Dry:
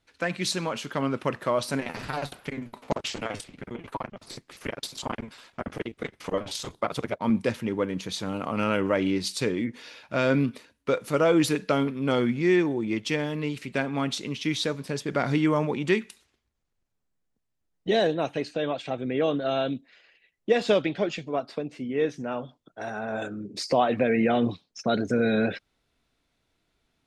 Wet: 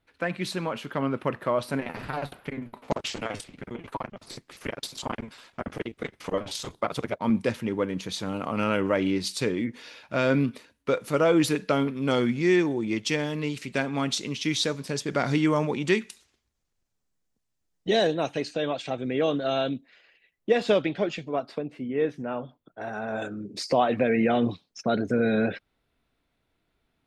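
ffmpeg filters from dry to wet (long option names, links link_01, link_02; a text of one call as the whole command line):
ffmpeg -i in.wav -af "asetnsamples=nb_out_samples=441:pad=0,asendcmd='2.84 equalizer g -0.5;11.96 equalizer g 5.5;19.69 equalizer g -3;21.58 equalizer g -12.5;22.93 equalizer g -1;24.81 equalizer g -9',equalizer=frequency=6400:width_type=o:width=1.4:gain=-11" out.wav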